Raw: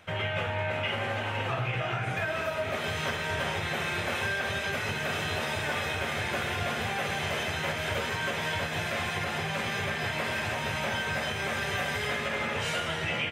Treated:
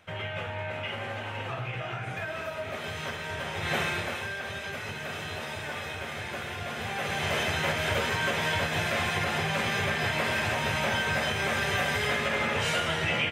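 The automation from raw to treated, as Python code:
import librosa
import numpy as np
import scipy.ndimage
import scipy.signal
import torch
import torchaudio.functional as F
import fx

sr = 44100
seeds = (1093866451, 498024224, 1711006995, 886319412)

y = fx.gain(x, sr, db=fx.line((3.52, -4.0), (3.75, 4.0), (4.25, -5.0), (6.65, -5.0), (7.36, 3.0)))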